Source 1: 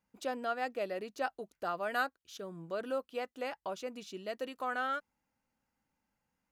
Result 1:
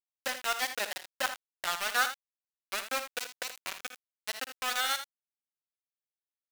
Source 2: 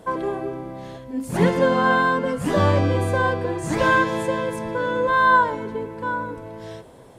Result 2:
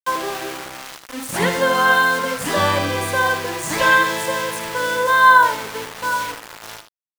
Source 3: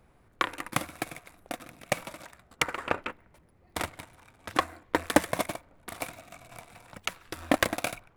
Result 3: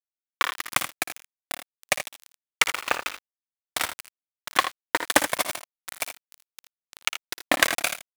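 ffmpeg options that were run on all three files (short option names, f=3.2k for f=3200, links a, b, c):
-af "aeval=exprs='val(0)*gte(abs(val(0)),0.0282)':c=same,tiltshelf=f=680:g=-8,aecho=1:1:56|80:0.224|0.282,volume=1dB"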